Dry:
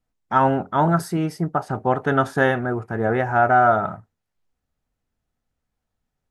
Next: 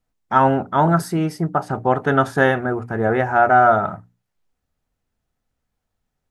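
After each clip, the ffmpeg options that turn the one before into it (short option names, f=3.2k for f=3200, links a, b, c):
-af "bandreject=f=60:t=h:w=6,bandreject=f=120:t=h:w=6,bandreject=f=180:t=h:w=6,bandreject=f=240:t=h:w=6,bandreject=f=300:t=h:w=6,volume=2.5dB"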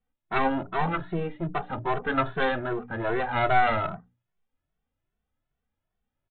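-filter_complex "[0:a]aresample=8000,aeval=exprs='clip(val(0),-1,0.0596)':c=same,aresample=44100,asplit=2[a][b];[b]adelay=2.2,afreqshift=2.5[c];[a][c]amix=inputs=2:normalize=1,volume=-2.5dB"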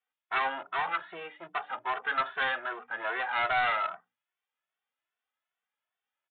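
-af "highpass=1.1k,aresample=8000,asoftclip=type=tanh:threshold=-24dB,aresample=44100,volume=3dB"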